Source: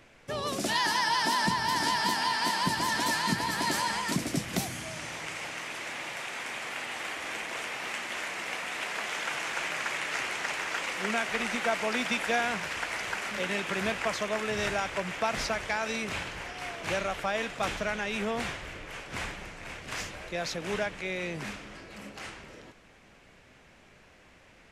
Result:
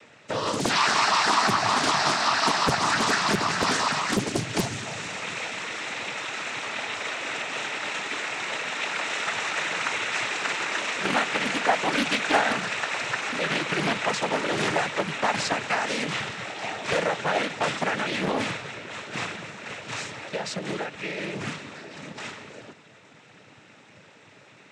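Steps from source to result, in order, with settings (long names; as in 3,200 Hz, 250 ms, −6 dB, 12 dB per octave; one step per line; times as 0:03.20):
0:19.23–0:21.33: downward compressor, threshold −33 dBFS, peak gain reduction 7 dB
cochlear-implant simulation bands 12
highs frequency-modulated by the lows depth 0.97 ms
level +6 dB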